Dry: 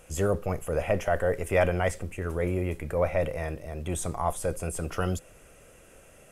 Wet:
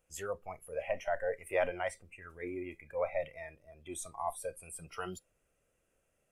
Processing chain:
noise reduction from a noise print of the clip's start 17 dB
level −7 dB

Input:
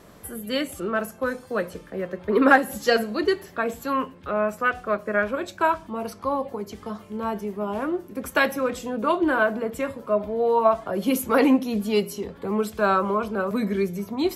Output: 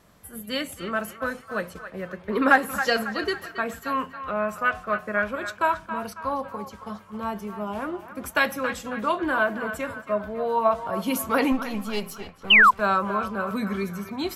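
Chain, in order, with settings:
0:11.52–0:12.80: gain on one half-wave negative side −7 dB
noise gate −35 dBFS, range −6 dB
parametric band 390 Hz −7 dB 1.3 octaves
feedback echo with a band-pass in the loop 274 ms, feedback 51%, band-pass 1,500 Hz, level −9 dB
0:12.50–0:12.71: sound drawn into the spectrogram fall 950–3,200 Hz −13 dBFS

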